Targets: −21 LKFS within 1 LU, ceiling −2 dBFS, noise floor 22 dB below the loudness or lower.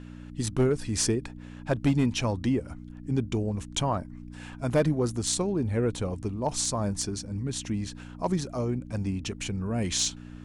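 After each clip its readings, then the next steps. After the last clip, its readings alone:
share of clipped samples 0.4%; peaks flattened at −16.5 dBFS; mains hum 60 Hz; hum harmonics up to 300 Hz; level of the hum −40 dBFS; integrated loudness −29.0 LKFS; sample peak −16.5 dBFS; target loudness −21.0 LKFS
→ clipped peaks rebuilt −16.5 dBFS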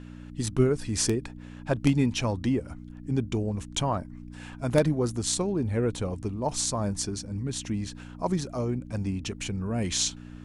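share of clipped samples 0.0%; mains hum 60 Hz; hum harmonics up to 300 Hz; level of the hum −40 dBFS
→ hum removal 60 Hz, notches 5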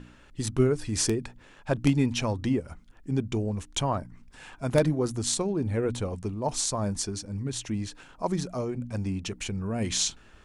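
mains hum none found; integrated loudness −29.0 LKFS; sample peak −7.5 dBFS; target loudness −21.0 LKFS
→ level +8 dB
brickwall limiter −2 dBFS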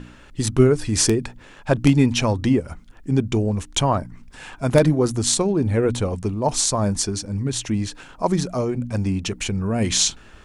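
integrated loudness −21.0 LKFS; sample peak −2.0 dBFS; background noise floor −46 dBFS

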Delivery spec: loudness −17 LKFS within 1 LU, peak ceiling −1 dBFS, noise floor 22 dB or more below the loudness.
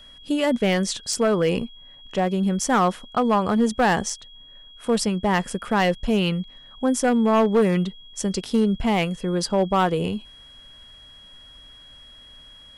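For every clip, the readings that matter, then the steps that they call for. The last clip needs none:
share of clipped samples 1.3%; peaks flattened at −13.0 dBFS; interfering tone 3,300 Hz; level of the tone −45 dBFS; integrated loudness −22.5 LKFS; sample peak −13.0 dBFS; target loudness −17.0 LKFS
→ clipped peaks rebuilt −13 dBFS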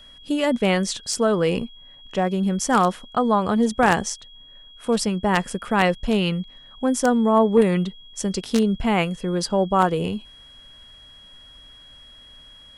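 share of clipped samples 0.0%; interfering tone 3,300 Hz; level of the tone −45 dBFS
→ notch filter 3,300 Hz, Q 30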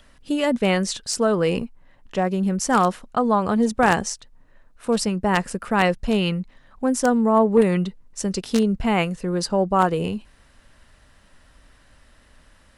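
interfering tone none found; integrated loudness −21.5 LKFS; sample peak −4.0 dBFS; target loudness −17.0 LKFS
→ level +4.5 dB
brickwall limiter −1 dBFS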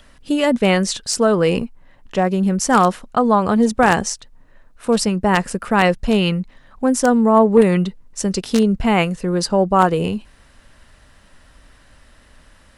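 integrated loudness −17.5 LKFS; sample peak −1.0 dBFS; background noise floor −51 dBFS

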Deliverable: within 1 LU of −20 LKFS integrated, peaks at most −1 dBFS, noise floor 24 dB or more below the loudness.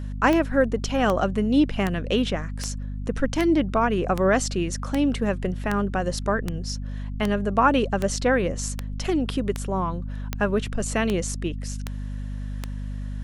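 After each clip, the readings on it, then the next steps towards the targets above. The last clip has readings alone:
number of clicks 17; mains hum 50 Hz; hum harmonics up to 250 Hz; level of the hum −28 dBFS; integrated loudness −25.0 LKFS; sample peak −6.0 dBFS; target loudness −20.0 LKFS
→ click removal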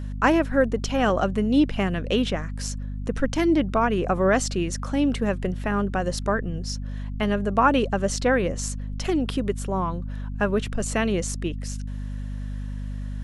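number of clicks 0; mains hum 50 Hz; hum harmonics up to 250 Hz; level of the hum −28 dBFS
→ hum removal 50 Hz, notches 5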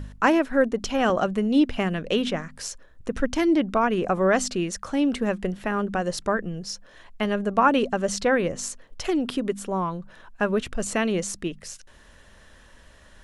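mains hum none found; integrated loudness −24.5 LKFS; sample peak −6.5 dBFS; target loudness −20.0 LKFS
→ level +4.5 dB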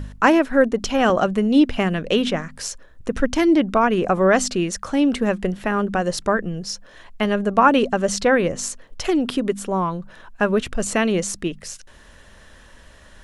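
integrated loudness −20.0 LKFS; sample peak −2.0 dBFS; background noise floor −47 dBFS

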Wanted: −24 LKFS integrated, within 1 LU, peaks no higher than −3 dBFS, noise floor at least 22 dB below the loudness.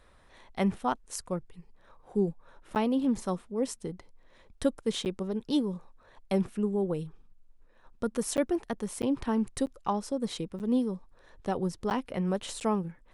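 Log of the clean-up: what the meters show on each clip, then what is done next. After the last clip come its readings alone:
number of dropouts 8; longest dropout 9.1 ms; integrated loudness −31.5 LKFS; sample peak −13.0 dBFS; target loudness −24.0 LKFS
→ repair the gap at 0:02.75/0:05.05/0:08.37/0:09.02/0:09.66/0:10.59/0:11.90/0:12.60, 9.1 ms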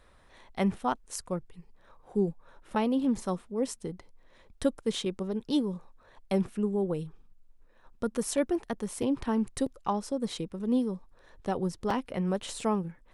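number of dropouts 0; integrated loudness −31.5 LKFS; sample peak −13.0 dBFS; target loudness −24.0 LKFS
→ level +7.5 dB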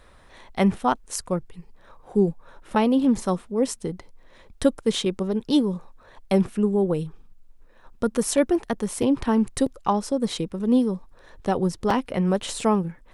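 integrated loudness −24.0 LKFS; sample peak −5.5 dBFS; background noise floor −52 dBFS

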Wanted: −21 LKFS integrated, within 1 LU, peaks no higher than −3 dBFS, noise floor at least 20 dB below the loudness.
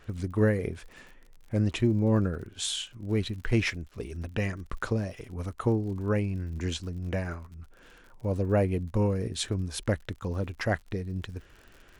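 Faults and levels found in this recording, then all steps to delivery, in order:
crackle rate 58 per second; integrated loudness −30.0 LKFS; sample peak −13.0 dBFS; target loudness −21.0 LKFS
→ click removal
level +9 dB

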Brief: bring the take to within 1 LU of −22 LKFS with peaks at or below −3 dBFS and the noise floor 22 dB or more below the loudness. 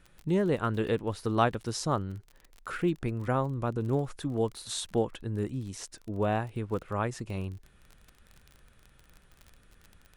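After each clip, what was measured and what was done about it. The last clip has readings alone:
crackle rate 32 per second; integrated loudness −31.5 LKFS; sample peak −10.5 dBFS; target loudness −22.0 LKFS
→ click removal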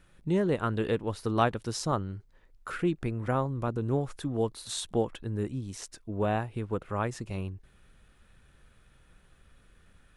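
crackle rate 0 per second; integrated loudness −31.5 LKFS; sample peak −10.5 dBFS; target loudness −22.0 LKFS
→ level +9.5 dB
brickwall limiter −3 dBFS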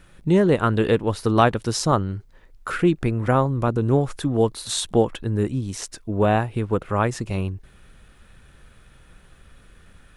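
integrated loudness −22.0 LKFS; sample peak −3.0 dBFS; background noise floor −52 dBFS

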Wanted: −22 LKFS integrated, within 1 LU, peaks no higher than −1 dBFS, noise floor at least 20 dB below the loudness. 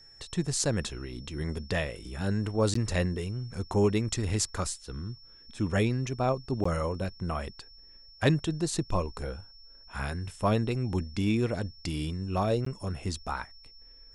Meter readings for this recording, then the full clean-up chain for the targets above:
number of dropouts 3; longest dropout 14 ms; interfering tone 5,400 Hz; level of the tone −52 dBFS; integrated loudness −31.0 LKFS; sample peak −11.5 dBFS; target loudness −22.0 LKFS
→ repair the gap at 0:02.74/0:06.64/0:12.65, 14 ms
notch filter 5,400 Hz, Q 30
level +9 dB

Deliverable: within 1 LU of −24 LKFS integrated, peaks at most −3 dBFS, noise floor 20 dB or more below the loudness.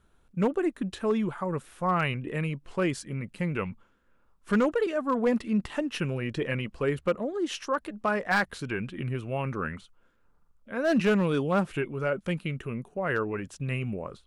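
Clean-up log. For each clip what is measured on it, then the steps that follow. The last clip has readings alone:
share of clipped samples 0.4%; peaks flattened at −17.5 dBFS; integrated loudness −29.5 LKFS; sample peak −17.5 dBFS; target loudness −24.0 LKFS
→ clipped peaks rebuilt −17.5 dBFS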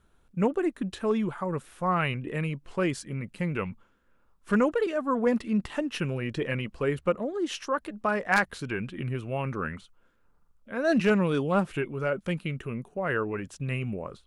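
share of clipped samples 0.0%; integrated loudness −29.0 LKFS; sample peak −8.5 dBFS; target loudness −24.0 LKFS
→ level +5 dB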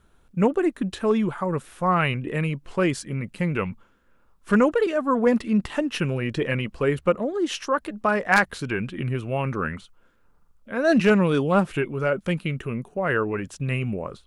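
integrated loudness −24.0 LKFS; sample peak −3.5 dBFS; background noise floor −60 dBFS

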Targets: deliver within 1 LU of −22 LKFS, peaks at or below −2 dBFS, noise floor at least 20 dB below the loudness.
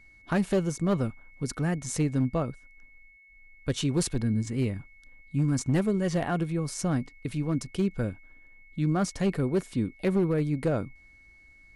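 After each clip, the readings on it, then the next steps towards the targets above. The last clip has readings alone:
share of clipped samples 0.7%; peaks flattened at −18.5 dBFS; interfering tone 2,200 Hz; level of the tone −54 dBFS; integrated loudness −29.0 LKFS; sample peak −18.5 dBFS; target loudness −22.0 LKFS
→ clipped peaks rebuilt −18.5 dBFS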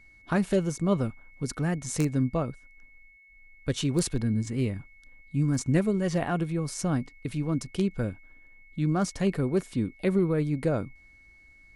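share of clipped samples 0.0%; interfering tone 2,200 Hz; level of the tone −54 dBFS
→ notch filter 2,200 Hz, Q 30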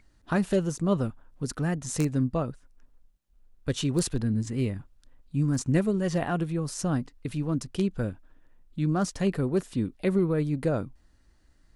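interfering tone none found; integrated loudness −28.5 LKFS; sample peak −9.5 dBFS; target loudness −22.0 LKFS
→ level +6.5 dB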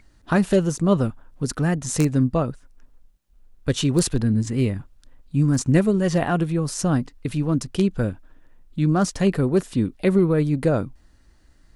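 integrated loudness −22.0 LKFS; sample peak −3.0 dBFS; background noise floor −56 dBFS

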